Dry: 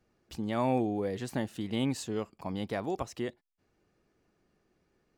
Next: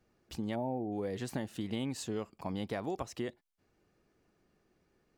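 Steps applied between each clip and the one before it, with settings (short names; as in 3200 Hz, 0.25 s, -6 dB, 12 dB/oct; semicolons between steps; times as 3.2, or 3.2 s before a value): spectral gain 0.55–0.92, 960–11000 Hz -22 dB; compressor, threshold -32 dBFS, peak gain reduction 8.5 dB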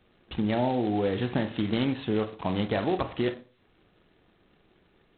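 reverb RT60 0.40 s, pre-delay 22 ms, DRR 8.5 dB; gain +9 dB; G.726 16 kbps 8000 Hz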